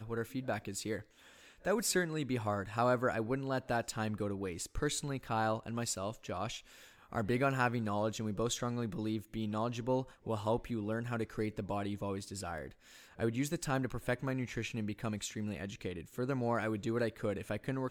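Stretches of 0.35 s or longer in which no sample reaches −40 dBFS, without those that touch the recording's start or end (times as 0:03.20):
0:01.00–0:01.65
0:06.58–0:07.13
0:12.67–0:13.19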